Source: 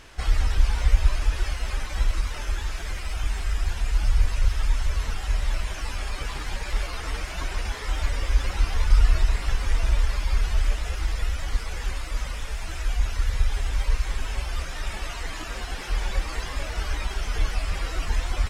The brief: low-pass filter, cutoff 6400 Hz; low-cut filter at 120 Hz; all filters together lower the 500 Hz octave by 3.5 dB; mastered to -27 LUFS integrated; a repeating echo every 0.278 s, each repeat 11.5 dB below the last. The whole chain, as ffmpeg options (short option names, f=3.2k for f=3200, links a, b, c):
-af "highpass=120,lowpass=6.4k,equalizer=f=500:t=o:g=-4.5,aecho=1:1:278|556|834:0.266|0.0718|0.0194,volume=8.5dB"